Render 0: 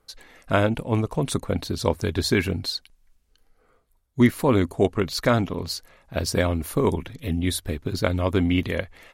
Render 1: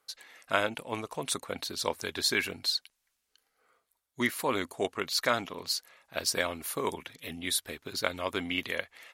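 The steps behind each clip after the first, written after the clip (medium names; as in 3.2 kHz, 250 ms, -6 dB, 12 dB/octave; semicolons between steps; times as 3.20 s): high-pass 1.4 kHz 6 dB/octave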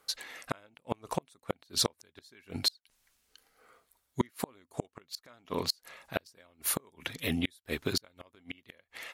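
bass shelf 290 Hz +6 dB; inverted gate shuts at -21 dBFS, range -37 dB; trim +7 dB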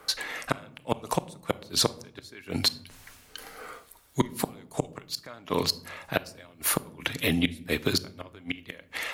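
reverse; upward compressor, threshold -47 dBFS; reverse; simulated room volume 840 m³, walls furnished, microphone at 0.46 m; three bands compressed up and down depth 40%; trim +6.5 dB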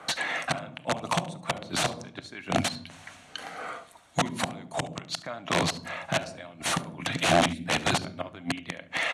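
integer overflow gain 21 dB; cabinet simulation 110–8100 Hz, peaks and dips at 170 Hz +4 dB, 430 Hz -8 dB, 690 Hz +8 dB, 5 kHz -9 dB, 7.3 kHz -4 dB; delay 71 ms -20 dB; trim +5.5 dB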